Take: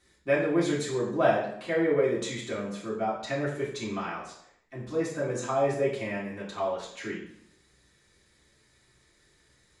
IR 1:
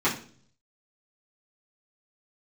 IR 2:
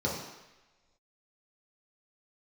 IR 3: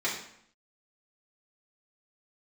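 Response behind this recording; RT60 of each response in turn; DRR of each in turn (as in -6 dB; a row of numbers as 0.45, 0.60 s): 3; 0.45, 1.1, 0.65 s; -10.0, -5.0, -7.0 dB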